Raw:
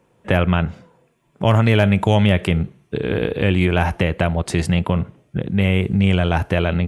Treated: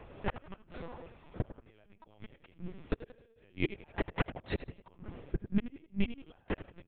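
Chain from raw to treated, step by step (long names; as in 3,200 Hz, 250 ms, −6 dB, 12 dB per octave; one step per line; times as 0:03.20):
high-pass filter 160 Hz 12 dB per octave
downward compressor 6 to 1, threshold −33 dBFS, peak gain reduction 19.5 dB
gate with flip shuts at −25 dBFS, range −37 dB
echo with shifted repeats 88 ms, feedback 36%, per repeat +39 Hz, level −13.5 dB
linear-prediction vocoder at 8 kHz pitch kept
level +9.5 dB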